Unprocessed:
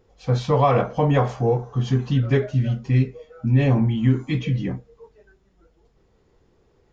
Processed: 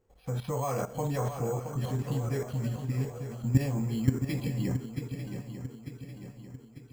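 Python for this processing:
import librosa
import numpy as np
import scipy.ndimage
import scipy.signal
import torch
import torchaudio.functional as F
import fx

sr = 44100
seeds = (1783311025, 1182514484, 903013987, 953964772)

y = fx.level_steps(x, sr, step_db=14)
y = np.repeat(scipy.signal.resample_poly(y, 1, 6), 6)[:len(y)]
y = fx.echo_swing(y, sr, ms=896, ratio=3, feedback_pct=48, wet_db=-9.0)
y = y * 10.0 ** (-2.5 / 20.0)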